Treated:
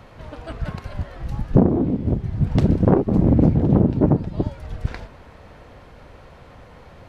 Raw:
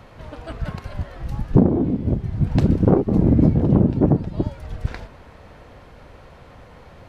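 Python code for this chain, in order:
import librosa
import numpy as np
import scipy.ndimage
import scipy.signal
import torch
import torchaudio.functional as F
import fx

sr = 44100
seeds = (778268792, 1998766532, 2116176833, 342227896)

y = fx.doppler_dist(x, sr, depth_ms=0.52)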